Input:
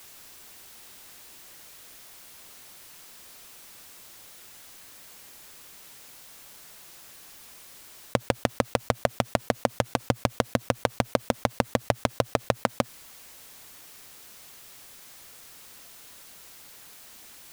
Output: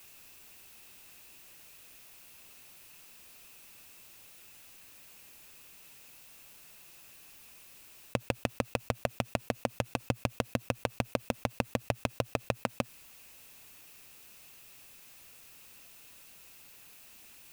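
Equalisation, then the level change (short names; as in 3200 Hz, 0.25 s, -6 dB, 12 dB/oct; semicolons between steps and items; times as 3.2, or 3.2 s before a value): low shelf 300 Hz +5 dB; bell 2600 Hz +10.5 dB 0.23 oct; high shelf 11000 Hz +5 dB; -9.0 dB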